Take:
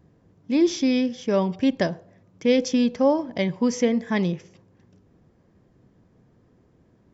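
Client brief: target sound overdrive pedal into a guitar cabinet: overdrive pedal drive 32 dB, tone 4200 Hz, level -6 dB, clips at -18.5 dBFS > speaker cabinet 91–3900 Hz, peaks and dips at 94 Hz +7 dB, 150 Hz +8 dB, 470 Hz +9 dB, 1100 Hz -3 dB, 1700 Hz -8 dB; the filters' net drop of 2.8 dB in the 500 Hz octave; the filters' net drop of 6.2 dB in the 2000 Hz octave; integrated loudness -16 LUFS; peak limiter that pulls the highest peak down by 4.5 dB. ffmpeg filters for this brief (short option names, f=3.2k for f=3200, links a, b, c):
-filter_complex "[0:a]equalizer=f=500:t=o:g=-9,equalizer=f=2k:t=o:g=-3.5,alimiter=limit=-18.5dB:level=0:latency=1,asplit=2[a][b];[b]highpass=f=720:p=1,volume=32dB,asoftclip=type=tanh:threshold=-18.5dB[c];[a][c]amix=inputs=2:normalize=0,lowpass=f=4.2k:p=1,volume=-6dB,highpass=91,equalizer=f=94:t=q:w=4:g=7,equalizer=f=150:t=q:w=4:g=8,equalizer=f=470:t=q:w=4:g=9,equalizer=f=1.1k:t=q:w=4:g=-3,equalizer=f=1.7k:t=q:w=4:g=-8,lowpass=f=3.9k:w=0.5412,lowpass=f=3.9k:w=1.3066,volume=8dB"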